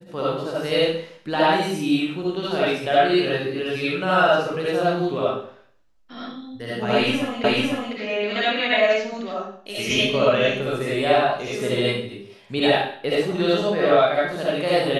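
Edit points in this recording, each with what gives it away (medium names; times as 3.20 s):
7.44 s: repeat of the last 0.5 s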